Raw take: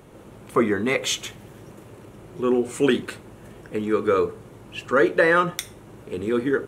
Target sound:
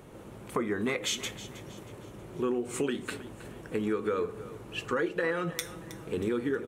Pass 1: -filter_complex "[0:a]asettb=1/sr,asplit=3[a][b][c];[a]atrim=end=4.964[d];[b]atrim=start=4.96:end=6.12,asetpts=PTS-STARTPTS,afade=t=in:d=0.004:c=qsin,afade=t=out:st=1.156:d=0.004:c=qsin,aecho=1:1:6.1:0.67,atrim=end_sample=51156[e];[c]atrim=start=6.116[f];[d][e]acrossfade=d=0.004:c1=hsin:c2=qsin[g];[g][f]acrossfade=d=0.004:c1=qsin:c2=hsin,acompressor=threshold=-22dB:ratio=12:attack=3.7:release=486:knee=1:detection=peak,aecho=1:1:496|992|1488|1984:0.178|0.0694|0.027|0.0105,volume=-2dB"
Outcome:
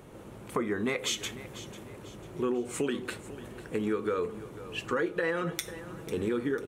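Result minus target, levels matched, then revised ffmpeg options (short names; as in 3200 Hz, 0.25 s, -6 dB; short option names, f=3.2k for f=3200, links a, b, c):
echo 0.178 s late
-filter_complex "[0:a]asettb=1/sr,asplit=3[a][b][c];[a]atrim=end=4.964[d];[b]atrim=start=4.96:end=6.12,asetpts=PTS-STARTPTS,afade=t=in:d=0.004:c=qsin,afade=t=out:st=1.156:d=0.004:c=qsin,aecho=1:1:6.1:0.67,atrim=end_sample=51156[e];[c]atrim=start=6.116[f];[d][e]acrossfade=d=0.004:c1=hsin:c2=qsin[g];[g][f]acrossfade=d=0.004:c1=qsin:c2=hsin,acompressor=threshold=-22dB:ratio=12:attack=3.7:release=486:knee=1:detection=peak,aecho=1:1:318|636|954|1272:0.178|0.0694|0.027|0.0105,volume=-2dB"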